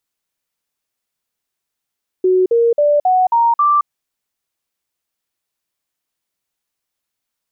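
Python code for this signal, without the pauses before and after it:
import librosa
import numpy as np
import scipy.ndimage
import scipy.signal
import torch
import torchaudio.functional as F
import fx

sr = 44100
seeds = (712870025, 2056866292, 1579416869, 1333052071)

y = fx.stepped_sweep(sr, from_hz=370.0, direction='up', per_octave=3, tones=6, dwell_s=0.22, gap_s=0.05, level_db=-9.5)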